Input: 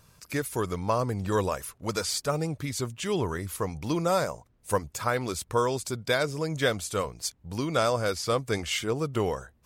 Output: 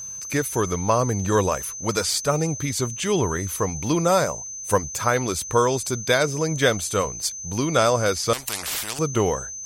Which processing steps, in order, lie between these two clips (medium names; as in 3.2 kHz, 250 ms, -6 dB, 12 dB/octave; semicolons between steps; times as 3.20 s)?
whistle 6.2 kHz -38 dBFS; 8.33–8.99 s: spectrum-flattening compressor 10:1; trim +6 dB